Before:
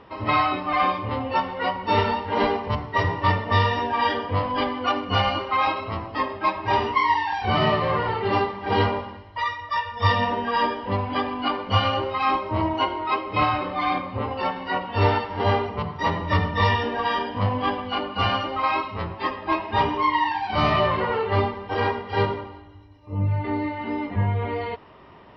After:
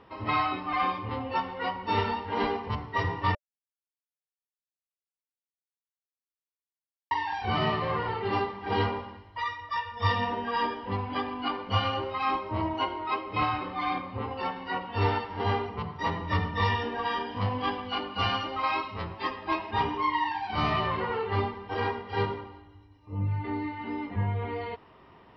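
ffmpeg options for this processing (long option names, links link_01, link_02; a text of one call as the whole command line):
ffmpeg -i in.wav -filter_complex "[0:a]asettb=1/sr,asplit=3[link_01][link_02][link_03];[link_01]atrim=end=17.294[link_04];[link_02]atrim=start=17.29:end=19.71,asetpts=PTS-STARTPTS,afade=type=in:duration=0.004:curve=qsin,afade=type=out:start_time=2.416:duration=0.004:curve=qsin,highshelf=frequency=3600:gain=7[link_05];[link_03]atrim=start=19.706[link_06];[link_04][link_05]acrossfade=duration=0.004:curve1=hsin:curve2=qsin[link_07];[link_07][link_06]acrossfade=duration=0.004:curve1=qsin:curve2=hsin,asplit=3[link_08][link_09][link_10];[link_08]atrim=end=3.35,asetpts=PTS-STARTPTS,afade=type=out:start_time=3.346:duration=0.004:curve=hsin[link_11];[link_09]atrim=start=3.35:end=7.11,asetpts=PTS-STARTPTS,volume=0[link_12];[link_10]atrim=start=7.11,asetpts=PTS-STARTPTS,afade=type=in:duration=0.004:curve=hsin[link_13];[link_11][link_12][link_13]concat=n=3:v=0:a=1,bandreject=frequency=590:width=12,volume=-6dB" out.wav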